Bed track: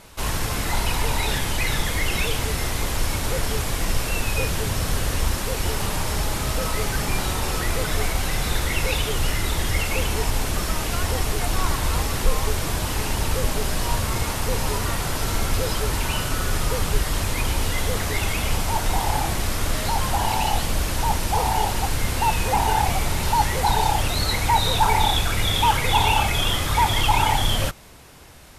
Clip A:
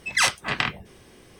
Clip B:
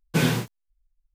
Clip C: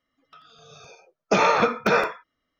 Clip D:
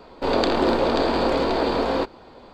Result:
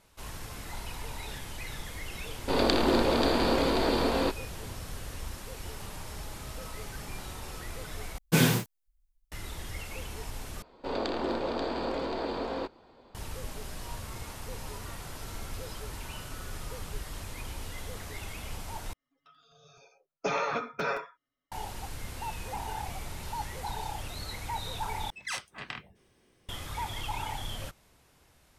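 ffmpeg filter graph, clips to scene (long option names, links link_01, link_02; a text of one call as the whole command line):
ffmpeg -i bed.wav -i cue0.wav -i cue1.wav -i cue2.wav -i cue3.wav -filter_complex "[4:a]asplit=2[link_01][link_02];[0:a]volume=-16.5dB[link_03];[link_01]equalizer=frequency=690:width=0.46:gain=-6[link_04];[2:a]highshelf=frequency=7300:gain=8[link_05];[3:a]aecho=1:1:7.2:0.72[link_06];[link_03]asplit=5[link_07][link_08][link_09][link_10][link_11];[link_07]atrim=end=8.184[link_12];[link_05]atrim=end=1.14,asetpts=PTS-STARTPTS,volume=-1.5dB[link_13];[link_08]atrim=start=9.316:end=10.624[link_14];[link_02]atrim=end=2.53,asetpts=PTS-STARTPTS,volume=-11.5dB[link_15];[link_09]atrim=start=13.146:end=18.934[link_16];[link_06]atrim=end=2.59,asetpts=PTS-STARTPTS,volume=-12.5dB[link_17];[link_10]atrim=start=21.516:end=25.104[link_18];[1:a]atrim=end=1.39,asetpts=PTS-STARTPTS,volume=-15.5dB[link_19];[link_11]atrim=start=26.486[link_20];[link_04]atrim=end=2.53,asetpts=PTS-STARTPTS,volume=-0.5dB,afade=type=in:duration=0.004:curve=hsin,afade=type=out:start_time=2.526:duration=0.004:curve=hsin,adelay=2260[link_21];[link_12][link_13]acrossfade=duration=0.004:curve1=hsin:curve2=hsin[link_22];[link_22][link_14]acrossfade=duration=0.004:curve1=hsin:curve2=hsin[link_23];[link_23][link_15]acrossfade=duration=0.004:curve1=hsin:curve2=hsin[link_24];[link_24][link_16]acrossfade=duration=0.004:curve1=hsin:curve2=hsin[link_25];[link_25][link_17]acrossfade=duration=0.004:curve1=hsin:curve2=hsin[link_26];[link_26][link_18]acrossfade=duration=0.004:curve1=hsin:curve2=hsin[link_27];[link_27][link_19]acrossfade=duration=0.004:curve1=hsin:curve2=hsin[link_28];[link_28][link_20]acrossfade=duration=0.004:curve1=hsin:curve2=hsin[link_29];[link_29][link_21]amix=inputs=2:normalize=0" out.wav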